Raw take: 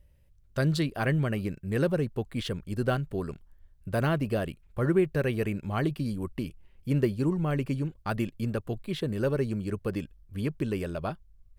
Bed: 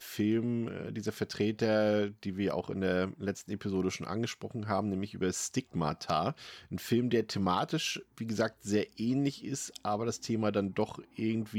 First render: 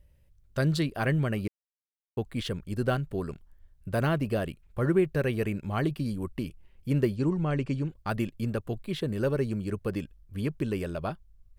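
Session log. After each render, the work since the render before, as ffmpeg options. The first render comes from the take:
-filter_complex "[0:a]asettb=1/sr,asplit=3[a][b][c];[a]atrim=end=7.164[d];[b]atrim=start=7.16:end=7.88,asetpts=PTS-STARTPTS,afade=t=in:d=0.004:c=qsin,afade=t=out:st=0.716:d=0.004:c=qsin,lowpass=f=7.9k:w=0.5412,lowpass=f=7.9k:w=1.3066[e];[c]atrim=start=7.876[f];[d][e]acrossfade=d=0.004:c1=hsin:c2=qsin[g];[g][f]acrossfade=d=0.004:c1=qsin:c2=hsin,asplit=3[h][i][j];[h]atrim=end=1.48,asetpts=PTS-STARTPTS,afade=t=out:st=1.476:d=0.004:c=hsin[k];[i]atrim=start=1.48:end=2.17,asetpts=PTS-STARTPTS,volume=0[l];[j]atrim=start=2.17,asetpts=PTS-STARTPTS,afade=t=in:d=0.004:c=hsin[m];[k][l][m]concat=n=3:v=0:a=1"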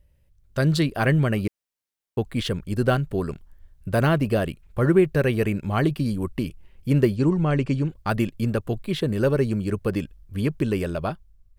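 -af "dynaudnorm=f=120:g=9:m=6.5dB"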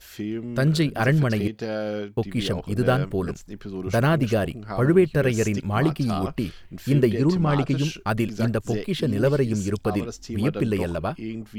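-filter_complex "[1:a]volume=-0.5dB[a];[0:a][a]amix=inputs=2:normalize=0"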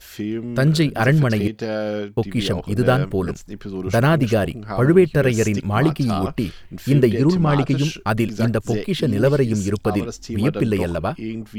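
-af "volume=4dB"

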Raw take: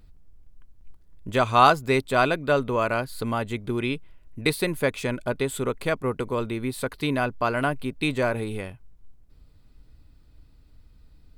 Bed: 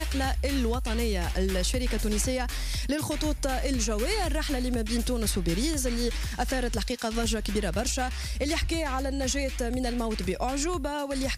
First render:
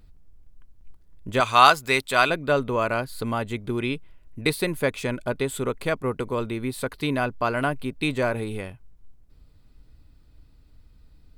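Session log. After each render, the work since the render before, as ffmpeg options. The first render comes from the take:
-filter_complex "[0:a]asettb=1/sr,asplit=3[a][b][c];[a]atrim=end=1.404[d];[b]atrim=start=1.4:end=2.3,asetpts=PTS-STARTPTS,afade=t=in:d=0.004:c=qsin,afade=t=out:st=0.896:d=0.004:c=qsin,tiltshelf=f=810:g=-7[e];[c]atrim=start=2.296[f];[d][e]acrossfade=d=0.004:c1=hsin:c2=qsin[g];[g][f]acrossfade=d=0.004:c1=qsin:c2=hsin"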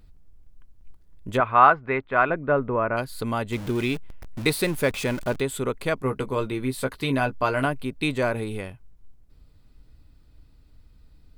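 -filter_complex "[0:a]asplit=3[a][b][c];[a]afade=t=out:st=1.36:d=0.02[d];[b]lowpass=f=1.9k:w=0.5412,lowpass=f=1.9k:w=1.3066,afade=t=in:st=1.36:d=0.02,afade=t=out:st=2.96:d=0.02[e];[c]afade=t=in:st=2.96:d=0.02[f];[d][e][f]amix=inputs=3:normalize=0,asettb=1/sr,asplit=3[g][h][i];[g]atrim=end=3.524[j];[h]atrim=start=3.52:end=5.41,asetpts=PTS-STARTPTS,afade=t=in:d=0.004:c=qsin,afade=t=out:st=1.886:d=0.004:c=qsin,aeval=exprs='val(0)+0.5*0.0237*sgn(val(0))':c=same[k];[i]atrim=start=5.406[l];[j][k]acrossfade=d=0.004:c1=hsin:c2=qsin[m];[m][l]acrossfade=d=0.004:c1=qsin:c2=hsin,asettb=1/sr,asplit=3[n][o][p];[n]atrim=end=5.964[q];[o]atrim=start=5.96:end=7.66,asetpts=PTS-STARTPTS,afade=t=in:d=0.004:c=qsin,afade=t=out:st=1.696:d=0.004:c=qsin,asplit=2[r][s];[s]adelay=15,volume=-7dB[t];[r][t]amix=inputs=2:normalize=0,atrim=end_sample=74970[u];[p]atrim=start=7.656[v];[q][u]acrossfade=d=0.004:c1=hsin:c2=qsin[w];[w][v]acrossfade=d=0.004:c1=qsin:c2=hsin"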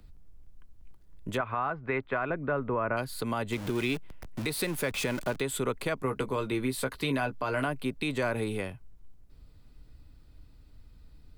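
-filter_complex "[0:a]acrossover=split=110|240|820[a][b][c][d];[a]acompressor=threshold=-42dB:ratio=4[e];[b]acompressor=threshold=-36dB:ratio=4[f];[c]acompressor=threshold=-28dB:ratio=4[g];[d]acompressor=threshold=-26dB:ratio=4[h];[e][f][g][h]amix=inputs=4:normalize=0,alimiter=limit=-19.5dB:level=0:latency=1:release=125"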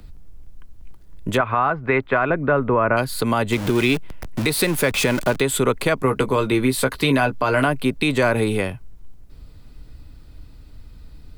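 -af "volume=11.5dB"

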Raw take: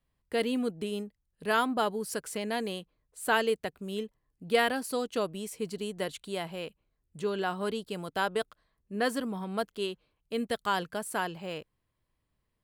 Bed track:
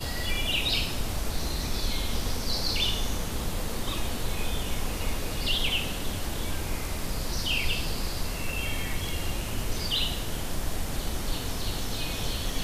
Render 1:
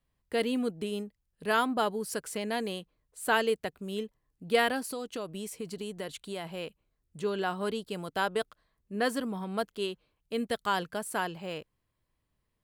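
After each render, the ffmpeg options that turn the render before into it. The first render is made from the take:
-filter_complex "[0:a]asettb=1/sr,asplit=3[a][b][c];[a]atrim=end=4.824[d];[b]atrim=start=4.82:end=6.55,asetpts=PTS-STARTPTS,afade=t=in:d=0.004:c=qsin,afade=t=out:st=1.726:d=0.004:c=qsin,acompressor=threshold=-32dB:ratio=5:attack=3.2:release=140:knee=1:detection=peak[e];[c]atrim=start=6.546[f];[d][e]acrossfade=d=0.004:c1=hsin:c2=qsin[g];[g][f]acrossfade=d=0.004:c1=qsin:c2=hsin"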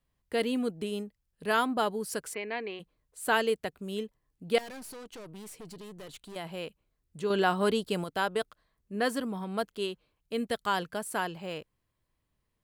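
-filter_complex "[0:a]asplit=3[a][b][c];[a]afade=t=out:st=2.33:d=0.02[d];[b]highpass=370,equalizer=f=390:t=q:w=4:g=4,equalizer=f=560:t=q:w=4:g=-9,equalizer=f=840:t=q:w=4:g=-3,equalizer=f=1.4k:t=q:w=4:g=-4,equalizer=f=2.3k:t=q:w=4:g=8,equalizer=f=3.3k:t=q:w=4:g=-8,lowpass=f=3.5k:w=0.5412,lowpass=f=3.5k:w=1.3066,afade=t=in:st=2.33:d=0.02,afade=t=out:st=2.79:d=0.02[e];[c]afade=t=in:st=2.79:d=0.02[f];[d][e][f]amix=inputs=3:normalize=0,asettb=1/sr,asplit=3[g][h][i];[g]atrim=end=4.584[j];[h]atrim=start=4.58:end=6.36,asetpts=PTS-STARTPTS,afade=t=in:d=0.004:c=qsin,afade=t=out:st=1.776:d=0.004:c=qsin,aeval=exprs='(tanh(126*val(0)+0.4)-tanh(0.4))/126':c=same[k];[i]atrim=start=6.356[l];[j][k]acrossfade=d=0.004:c1=hsin:c2=qsin[m];[m][l]acrossfade=d=0.004:c1=qsin:c2=hsin,asettb=1/sr,asplit=3[n][o][p];[n]atrim=end=7.304[q];[o]atrim=start=7.3:end=8.04,asetpts=PTS-STARTPTS,afade=t=in:d=0.004:c=qsin,afade=t=out:st=0.736:d=0.004:c=qsin,acontrast=45[r];[p]atrim=start=8.036[s];[q][r]acrossfade=d=0.004:c1=hsin:c2=qsin[t];[t][s]acrossfade=d=0.004:c1=qsin:c2=hsin"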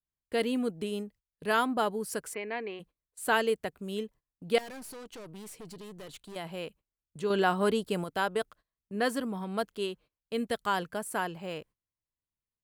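-af "agate=range=-19dB:threshold=-53dB:ratio=16:detection=peak,adynamicequalizer=threshold=0.00282:dfrequency=4000:dqfactor=1.2:tfrequency=4000:tqfactor=1.2:attack=5:release=100:ratio=0.375:range=3:mode=cutabove:tftype=bell"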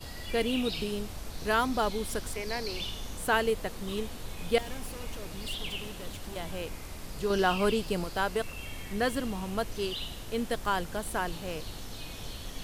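-filter_complex "[1:a]volume=-10dB[a];[0:a][a]amix=inputs=2:normalize=0"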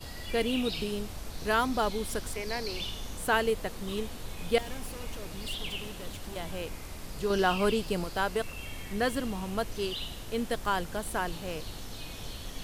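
-af anull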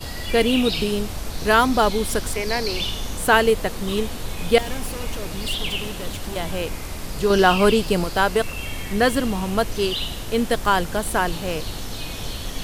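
-af "volume=10.5dB,alimiter=limit=-3dB:level=0:latency=1"

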